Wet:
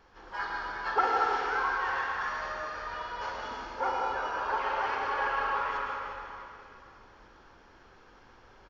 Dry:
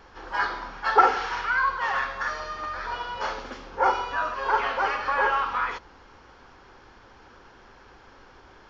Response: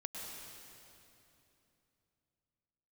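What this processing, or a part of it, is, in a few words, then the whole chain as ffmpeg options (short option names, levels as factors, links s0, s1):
cave: -filter_complex "[0:a]aecho=1:1:355:0.266[s0];[1:a]atrim=start_sample=2205[s1];[s0][s1]afir=irnorm=-1:irlink=0,volume=0.562"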